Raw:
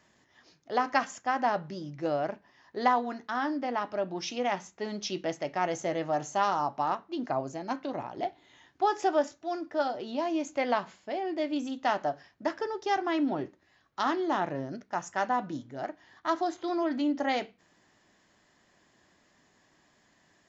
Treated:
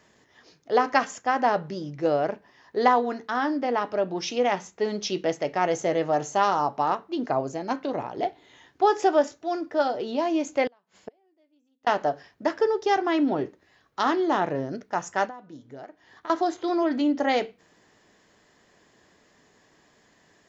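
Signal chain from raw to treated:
0:10.67–0:11.87: gate with flip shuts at −30 dBFS, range −40 dB
0:15.25–0:16.30: downward compressor 6 to 1, threshold −45 dBFS, peak gain reduction 20 dB
parametric band 450 Hz +8 dB 0.31 octaves
level +4.5 dB

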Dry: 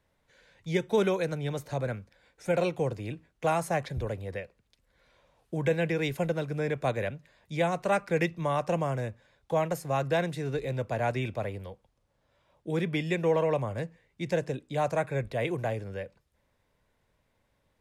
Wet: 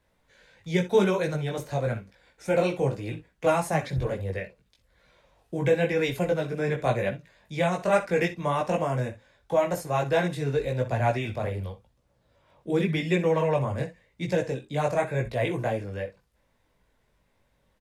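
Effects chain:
ambience of single reflections 45 ms −17.5 dB, 62 ms −15 dB
multi-voice chorus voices 4, 0.9 Hz, delay 19 ms, depth 3.3 ms
level +6 dB

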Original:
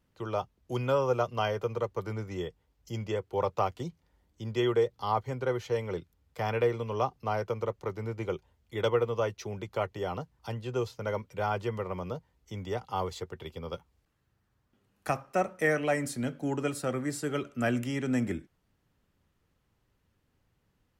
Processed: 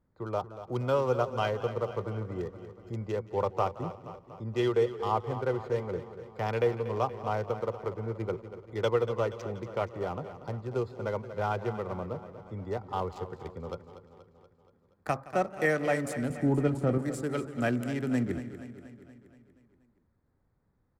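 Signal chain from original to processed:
adaptive Wiener filter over 15 samples
0:16.30–0:16.98: spectral tilt −3 dB per octave
repeating echo 238 ms, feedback 59%, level −12.5 dB
feedback echo with a swinging delay time 172 ms, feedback 44%, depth 105 cents, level −19 dB

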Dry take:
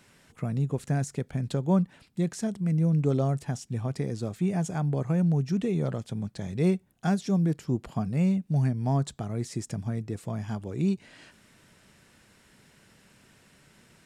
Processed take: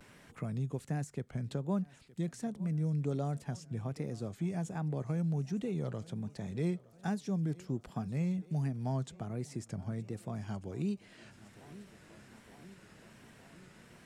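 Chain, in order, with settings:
feedback echo with a high-pass in the loop 912 ms, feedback 67%, high-pass 150 Hz, level −22 dB
pitch vibrato 1.3 Hz 84 cents
multiband upward and downward compressor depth 40%
level −8.5 dB

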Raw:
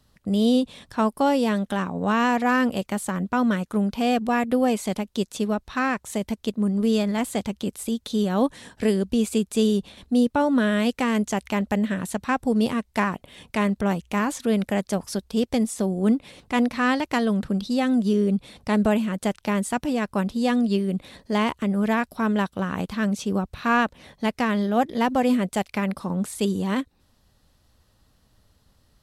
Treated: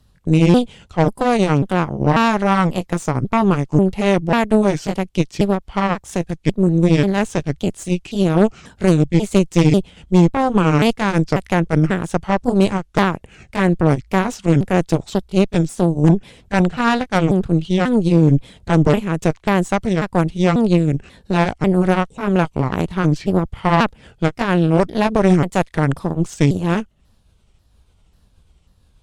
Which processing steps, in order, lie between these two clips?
pitch shifter swept by a sawtooth −6.5 semitones, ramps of 541 ms
low-shelf EQ 150 Hz +9.5 dB
harmonic generator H 2 −7 dB, 3 −18 dB, 4 −8 dB, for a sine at −6.5 dBFS
level +5.5 dB

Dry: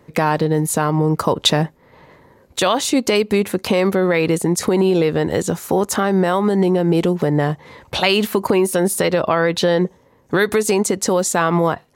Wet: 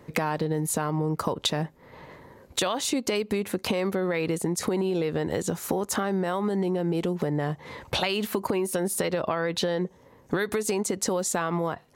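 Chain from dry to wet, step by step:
downward compressor 6 to 1, threshold −24 dBFS, peak gain reduction 13.5 dB

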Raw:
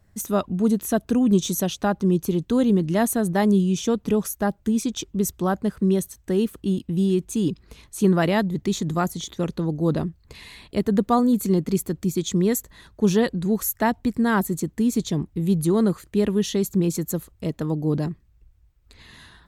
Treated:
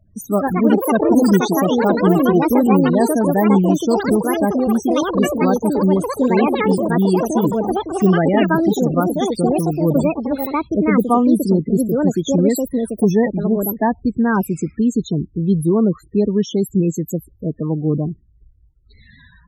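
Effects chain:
spectral peaks only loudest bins 16
delay with pitch and tempo change per echo 187 ms, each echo +5 semitones, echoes 3
level +4.5 dB

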